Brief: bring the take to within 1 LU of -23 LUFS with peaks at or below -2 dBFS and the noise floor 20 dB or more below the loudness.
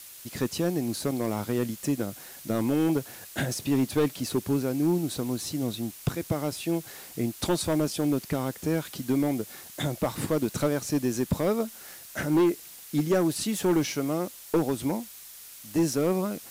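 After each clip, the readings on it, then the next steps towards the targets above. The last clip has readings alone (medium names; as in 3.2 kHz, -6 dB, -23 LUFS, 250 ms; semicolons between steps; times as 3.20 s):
clipped samples 1.4%; clipping level -18.0 dBFS; noise floor -46 dBFS; noise floor target -49 dBFS; loudness -28.5 LUFS; peak level -18.0 dBFS; loudness target -23.0 LUFS
-> clip repair -18 dBFS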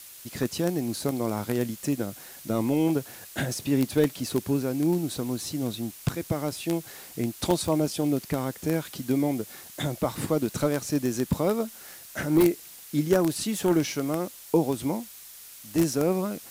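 clipped samples 0.0%; noise floor -46 dBFS; noise floor target -48 dBFS
-> noise reduction 6 dB, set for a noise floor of -46 dBFS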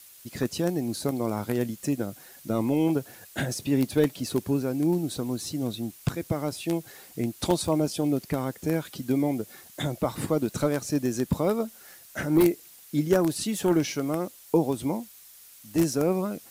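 noise floor -51 dBFS; loudness -27.5 LUFS; peak level -9.0 dBFS; loudness target -23.0 LUFS
-> trim +4.5 dB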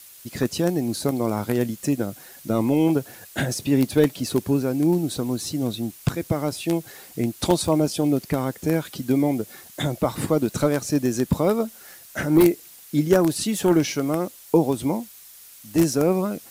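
loudness -23.0 LUFS; peak level -4.5 dBFS; noise floor -46 dBFS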